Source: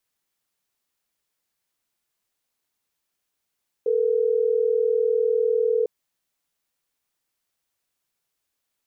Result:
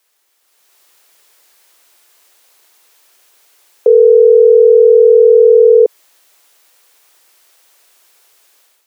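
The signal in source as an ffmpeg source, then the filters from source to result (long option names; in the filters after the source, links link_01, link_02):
-f lavfi -i "aevalsrc='0.0891*(sin(2*PI*440*t)+sin(2*PI*480*t))*clip(min(mod(t,6),2-mod(t,6))/0.005,0,1)':duration=3.12:sample_rate=44100"
-af "highpass=frequency=360:width=0.5412,highpass=frequency=360:width=1.3066,dynaudnorm=framelen=410:gausssize=3:maxgain=11.5dB,alimiter=level_in=16.5dB:limit=-1dB:release=50:level=0:latency=1"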